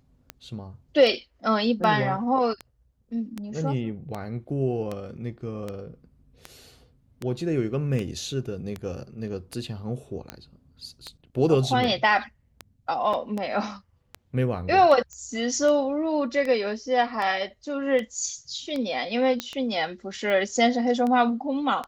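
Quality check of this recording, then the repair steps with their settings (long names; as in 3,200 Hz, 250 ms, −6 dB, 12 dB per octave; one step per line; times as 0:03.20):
scratch tick 78 rpm −18 dBFS
0:13.13: drop-out 5 ms
0:15.13: click −27 dBFS
0:19.40: click −12 dBFS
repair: click removal
repair the gap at 0:13.13, 5 ms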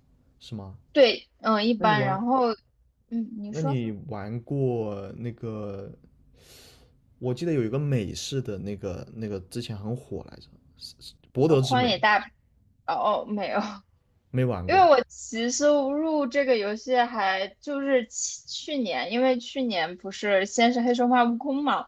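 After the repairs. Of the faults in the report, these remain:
0:19.40: click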